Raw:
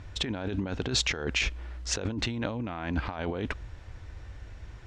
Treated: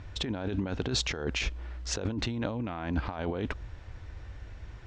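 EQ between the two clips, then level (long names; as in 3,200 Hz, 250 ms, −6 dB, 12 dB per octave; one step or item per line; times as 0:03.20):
Bessel low-pass filter 6,400 Hz, order 2
dynamic equaliser 2,200 Hz, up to −5 dB, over −42 dBFS, Q 0.96
0.0 dB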